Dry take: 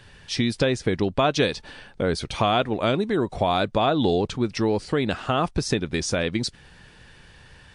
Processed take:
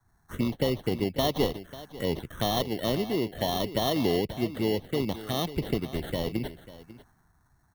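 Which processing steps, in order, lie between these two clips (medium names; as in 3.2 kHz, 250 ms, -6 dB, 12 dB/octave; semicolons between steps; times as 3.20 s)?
bass shelf 62 Hz -7 dB; sample-and-hold 18×; touch-sensitive phaser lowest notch 510 Hz, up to 1.5 kHz, full sweep at -20 dBFS; delay 544 ms -12.5 dB; three bands expanded up and down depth 40%; trim -3.5 dB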